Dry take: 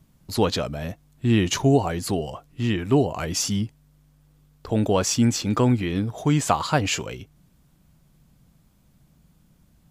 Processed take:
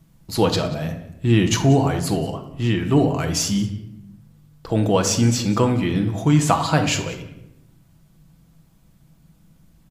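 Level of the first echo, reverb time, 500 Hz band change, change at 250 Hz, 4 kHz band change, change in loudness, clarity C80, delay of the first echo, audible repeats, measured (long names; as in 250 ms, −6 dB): −20.0 dB, 0.85 s, +2.0 dB, +3.0 dB, +2.5 dB, +3.0 dB, 11.5 dB, 185 ms, 1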